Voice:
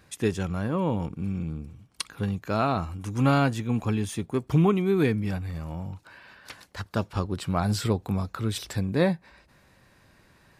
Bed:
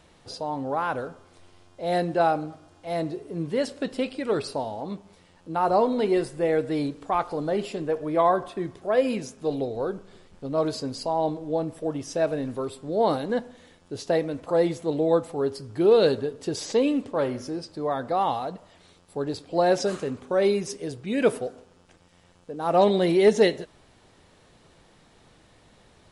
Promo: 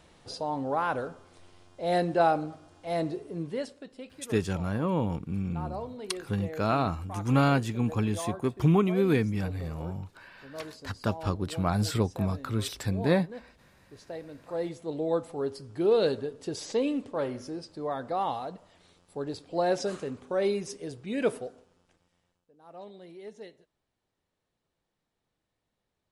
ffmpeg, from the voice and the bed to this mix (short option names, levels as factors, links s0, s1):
-filter_complex "[0:a]adelay=4100,volume=0.841[s0];[1:a]volume=2.99,afade=t=out:st=3.16:d=0.68:silence=0.177828,afade=t=in:st=14.17:d=1.13:silence=0.281838,afade=t=out:st=21.21:d=1.26:silence=0.0891251[s1];[s0][s1]amix=inputs=2:normalize=0"